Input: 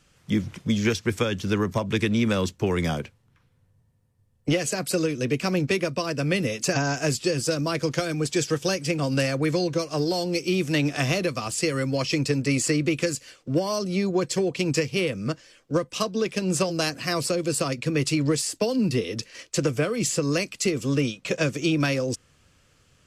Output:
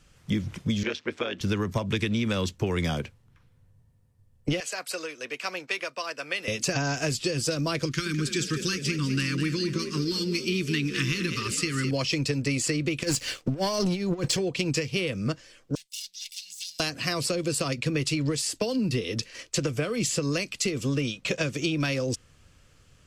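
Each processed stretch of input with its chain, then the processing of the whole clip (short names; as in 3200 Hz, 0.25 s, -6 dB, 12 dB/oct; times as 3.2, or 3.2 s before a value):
0.83–1.41 AM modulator 150 Hz, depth 55% + BPF 310–3500 Hz
4.6–6.48 HPF 860 Hz + high shelf 2900 Hz -7.5 dB
7.85–11.91 Chebyshev band-stop 330–1300 Hz + frequency-shifting echo 0.205 s, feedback 46%, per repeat +44 Hz, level -10 dB
13.03–14.37 negative-ratio compressor -29 dBFS, ratio -0.5 + sample leveller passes 2
15.75–16.8 minimum comb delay 1.4 ms + inverse Chebyshev high-pass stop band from 1300 Hz, stop band 50 dB + negative-ratio compressor -38 dBFS
whole clip: dynamic EQ 3400 Hz, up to +5 dB, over -40 dBFS, Q 0.93; compressor, threshold -24 dBFS; low shelf 70 Hz +10 dB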